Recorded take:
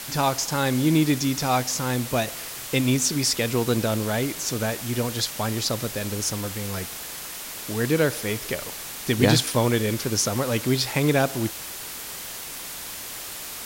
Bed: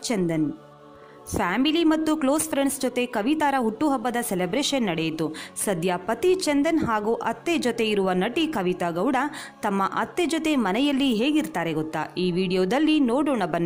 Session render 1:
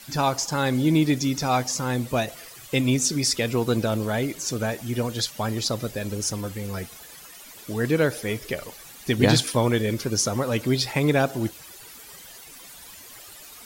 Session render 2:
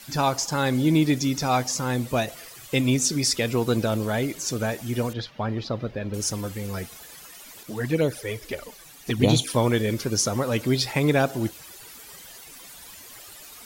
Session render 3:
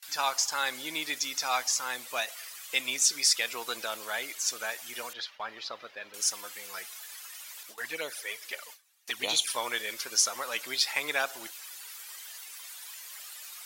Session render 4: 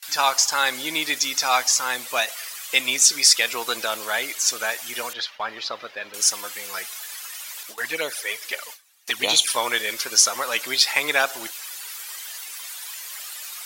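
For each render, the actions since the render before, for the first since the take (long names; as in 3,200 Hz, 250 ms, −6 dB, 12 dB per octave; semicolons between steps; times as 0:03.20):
broadband denoise 13 dB, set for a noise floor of −36 dBFS
0:05.13–0:06.14: high-frequency loss of the air 300 metres; 0:07.63–0:09.50: flanger swept by the level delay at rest 8.6 ms, full sweep at −16 dBFS
high-pass filter 1,200 Hz 12 dB per octave; noise gate with hold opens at −35 dBFS
level +9 dB; brickwall limiter −2 dBFS, peak gain reduction 1 dB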